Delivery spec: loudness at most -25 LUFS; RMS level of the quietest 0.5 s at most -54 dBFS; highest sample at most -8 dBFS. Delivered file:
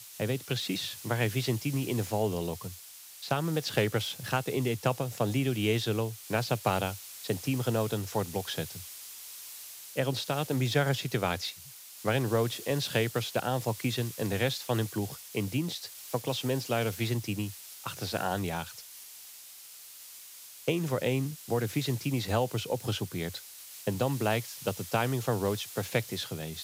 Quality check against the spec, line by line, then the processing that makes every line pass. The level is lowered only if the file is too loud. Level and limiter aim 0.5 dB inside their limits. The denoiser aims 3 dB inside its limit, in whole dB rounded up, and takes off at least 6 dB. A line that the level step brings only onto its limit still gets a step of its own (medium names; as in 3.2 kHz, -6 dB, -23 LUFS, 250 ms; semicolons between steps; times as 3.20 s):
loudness -31.5 LUFS: pass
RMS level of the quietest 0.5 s -49 dBFS: fail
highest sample -12.0 dBFS: pass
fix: noise reduction 8 dB, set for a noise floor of -49 dBFS